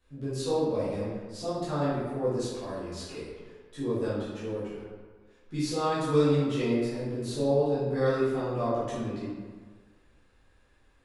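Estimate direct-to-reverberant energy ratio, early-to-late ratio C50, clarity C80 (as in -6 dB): -12.5 dB, -2.0 dB, 1.5 dB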